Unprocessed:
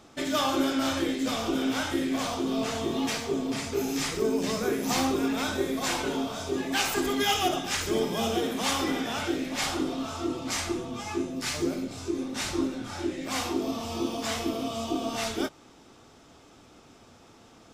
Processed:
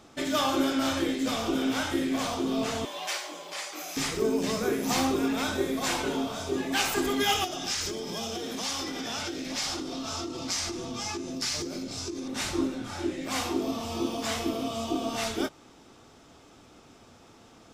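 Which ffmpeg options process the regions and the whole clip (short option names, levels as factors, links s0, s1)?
-filter_complex "[0:a]asettb=1/sr,asplit=3[s0][s1][s2];[s0]atrim=end=2.854[s3];[s1]atrim=start=2.85:end=3.97,asetpts=PTS-STARTPTS,afade=t=in:d=0.004:c=qsin,afade=t=out:st=1.116:d=0.004:c=qsin,highpass=f=660:w=0.5412,highpass=f=660:w=1.3066,afreqshift=-96[s4];[s2]atrim=start=3.966[s5];[s3][s4]acrossfade=d=0.004:c1=hsin:c2=qsin[s6];[s6][s5]acrossfade=d=0.004:c1=qsin:c2=hsin,asettb=1/sr,asplit=3[s7][s8][s9];[s7]atrim=end=7.444[s10];[s8]atrim=start=7.44:end=12.28,asetpts=PTS-STARTPTS,afade=t=in:d=0.004:c=qsin,afade=t=out:st=4.836:d=0.004:c=qsin,acompressor=threshold=0.0282:ratio=12:attack=3.2:release=140:knee=1:detection=peak,equalizer=f=5300:t=o:w=0.95:g=10.5[s11];[s9]atrim=start=12.276[s12];[s10][s11]acrossfade=d=0.004:c1=hsin:c2=qsin[s13];[s13][s12]acrossfade=d=0.004:c1=qsin:c2=hsin"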